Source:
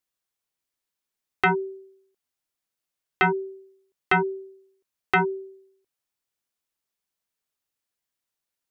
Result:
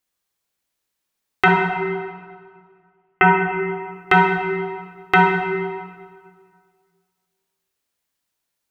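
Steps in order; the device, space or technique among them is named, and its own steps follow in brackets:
0:01.48–0:03.52: Butterworth low-pass 3,000 Hz 72 dB per octave
stairwell (convolution reverb RT60 1.9 s, pre-delay 17 ms, DRR 0.5 dB)
level +5 dB

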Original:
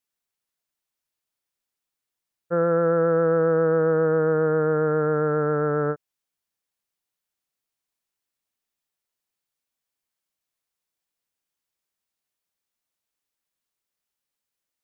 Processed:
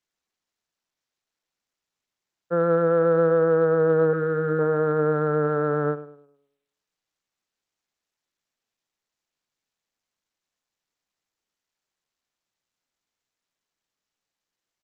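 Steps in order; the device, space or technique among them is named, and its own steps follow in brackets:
hum removal 315.4 Hz, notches 7
0:04.13–0:04.59: flat-topped bell 750 Hz −10.5 dB 1.2 octaves
tape delay 104 ms, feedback 43%, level −12.5 dB, low-pass 1,600 Hz
Bluetooth headset (high-pass filter 130 Hz 24 dB per octave; downsampling to 16,000 Hz; SBC 64 kbit/s 32,000 Hz)

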